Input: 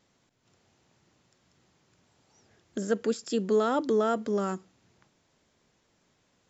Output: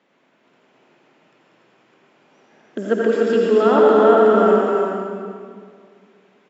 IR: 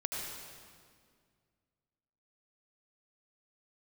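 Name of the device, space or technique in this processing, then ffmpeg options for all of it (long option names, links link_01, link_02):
stadium PA: -filter_complex "[0:a]highpass=frequency=140:width=0.5412,highpass=frequency=140:width=1.3066,acrossover=split=190 2800:gain=0.126 1 0.126[link_01][link_02][link_03];[link_01][link_02][link_03]amix=inputs=3:normalize=0,equalizer=frequency=2800:width_type=o:width=0.67:gain=4.5,aecho=1:1:209.9|291.5:0.316|0.631[link_04];[1:a]atrim=start_sample=2205[link_05];[link_04][link_05]afir=irnorm=-1:irlink=0,volume=9dB"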